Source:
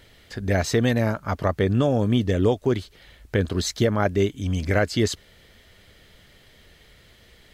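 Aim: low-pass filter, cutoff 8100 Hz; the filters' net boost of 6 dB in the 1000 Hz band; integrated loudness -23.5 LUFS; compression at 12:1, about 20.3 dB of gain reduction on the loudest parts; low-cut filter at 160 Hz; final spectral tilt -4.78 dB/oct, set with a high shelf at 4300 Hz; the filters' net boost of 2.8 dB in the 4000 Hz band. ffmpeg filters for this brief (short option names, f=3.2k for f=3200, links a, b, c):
-af "highpass=160,lowpass=8.1k,equalizer=f=1k:t=o:g=8.5,equalizer=f=4k:t=o:g=5.5,highshelf=f=4.3k:g=-4.5,acompressor=threshold=-34dB:ratio=12,volume=16dB"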